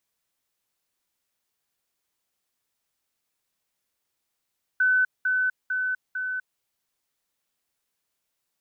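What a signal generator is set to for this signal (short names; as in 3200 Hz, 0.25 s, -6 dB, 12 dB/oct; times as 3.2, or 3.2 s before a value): level ladder 1510 Hz -17.5 dBFS, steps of -3 dB, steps 4, 0.25 s 0.20 s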